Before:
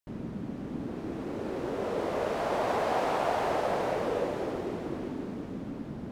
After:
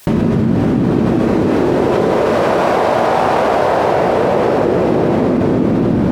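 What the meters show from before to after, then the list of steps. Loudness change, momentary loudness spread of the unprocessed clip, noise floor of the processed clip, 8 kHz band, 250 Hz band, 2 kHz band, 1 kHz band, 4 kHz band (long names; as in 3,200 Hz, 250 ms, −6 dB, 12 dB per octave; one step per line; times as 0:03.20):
+18.5 dB, 10 LU, −15 dBFS, can't be measured, +21.5 dB, +16.0 dB, +16.5 dB, +14.5 dB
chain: high-pass filter 61 Hz
rectangular room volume 220 cubic metres, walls hard, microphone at 1 metre
envelope flattener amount 100%
level +5.5 dB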